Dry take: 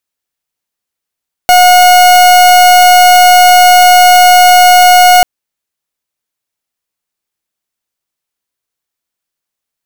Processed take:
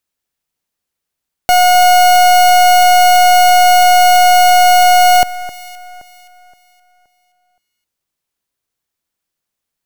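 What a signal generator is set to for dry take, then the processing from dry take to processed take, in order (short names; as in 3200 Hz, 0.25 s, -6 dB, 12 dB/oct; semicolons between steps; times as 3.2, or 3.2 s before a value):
pulse 723 Hz, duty 41% -3.5 dBFS 3.74 s
limiter -9 dBFS; low shelf 320 Hz +5 dB; echo with dull and thin repeats by turns 0.261 s, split 2000 Hz, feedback 57%, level -13.5 dB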